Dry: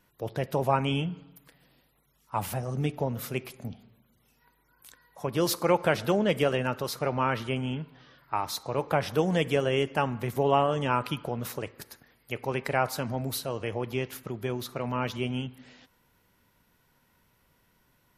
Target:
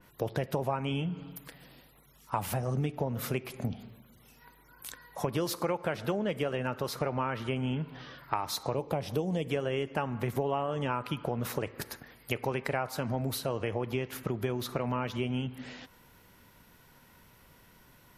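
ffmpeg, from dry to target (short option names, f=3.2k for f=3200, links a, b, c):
-filter_complex "[0:a]asettb=1/sr,asplit=3[a][b][c];[a]atrim=end=8.744[d];[b]atrim=start=8.74:end=9.5,asetpts=PTS-STARTPTS,afade=t=in:d=0.004:c=qsin,afade=t=out:st=0.756:d=0.004:c=qsin,equalizer=f=1.5k:w=1.2:g=-13.5[e];[c]atrim=start=9.496[f];[d][e]acrossfade=d=0.004:c1=hsin:c2=qsin[g];[g][f]acrossfade=d=0.004:c1=qsin:c2=hsin,acompressor=threshold=-37dB:ratio=6,adynamicequalizer=threshold=0.00112:dfrequency=3000:dqfactor=0.7:tfrequency=3000:tqfactor=0.7:attack=5:release=100:ratio=0.375:range=2.5:mode=cutabove:tftype=highshelf,volume=8.5dB"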